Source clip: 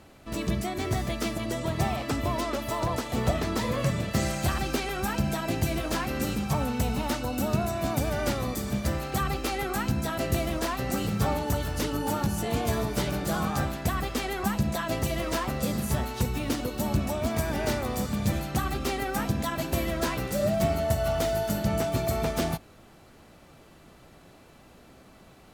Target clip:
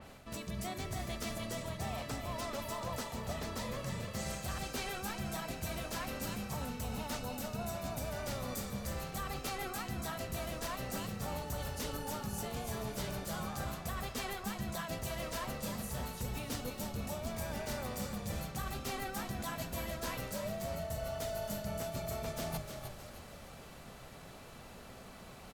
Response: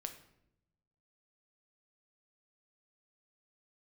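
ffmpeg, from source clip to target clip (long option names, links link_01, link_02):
-filter_complex "[0:a]equalizer=frequency=320:width_type=o:width=0.37:gain=-9.5,bandreject=frequency=50:width_type=h:width=6,bandreject=frequency=100:width_type=h:width=6,bandreject=frequency=150:width_type=h:width=6,areverse,acompressor=threshold=-40dB:ratio=6,areverse,asplit=6[link_01][link_02][link_03][link_04][link_05][link_06];[link_02]adelay=308,afreqshift=-34,volume=-7dB[link_07];[link_03]adelay=616,afreqshift=-68,volume=-14.3dB[link_08];[link_04]adelay=924,afreqshift=-102,volume=-21.7dB[link_09];[link_05]adelay=1232,afreqshift=-136,volume=-29dB[link_10];[link_06]adelay=1540,afreqshift=-170,volume=-36.3dB[link_11];[link_01][link_07][link_08][link_09][link_10][link_11]amix=inputs=6:normalize=0,adynamicequalizer=threshold=0.001:dfrequency=4000:dqfactor=0.7:tfrequency=4000:tqfactor=0.7:attack=5:release=100:ratio=0.375:range=2:mode=boostabove:tftype=highshelf,volume=1.5dB"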